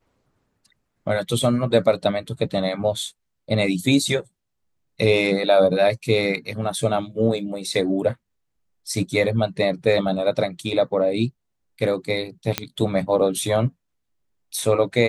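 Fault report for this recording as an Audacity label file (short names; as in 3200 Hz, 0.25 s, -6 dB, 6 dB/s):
12.580000	12.580000	pop -4 dBFS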